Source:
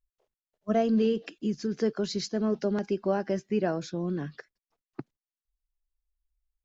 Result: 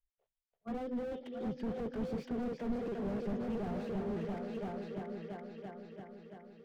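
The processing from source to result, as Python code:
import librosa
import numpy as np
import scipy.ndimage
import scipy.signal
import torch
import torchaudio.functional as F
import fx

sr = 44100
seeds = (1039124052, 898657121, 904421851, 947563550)

y = fx.pitch_ramps(x, sr, semitones=3.0, every_ms=1472)
y = fx.doppler_pass(y, sr, speed_mps=5, closest_m=6.6, pass_at_s=2.84)
y = scipy.signal.sosfilt(scipy.signal.butter(4, 3400.0, 'lowpass', fs=sr, output='sos'), y)
y = fx.peak_eq(y, sr, hz=290.0, db=-9.0, octaves=0.59)
y = np.clip(10.0 ** (25.5 / 20.0) * y, -1.0, 1.0) / 10.0 ** (25.5 / 20.0)
y = fx.rotary_switch(y, sr, hz=7.0, then_hz=1.0, switch_at_s=2.17)
y = fx.echo_heads(y, sr, ms=338, heads='all three', feedback_pct=52, wet_db=-11)
y = fx.slew_limit(y, sr, full_power_hz=5.0)
y = y * librosa.db_to_amplitude(2.0)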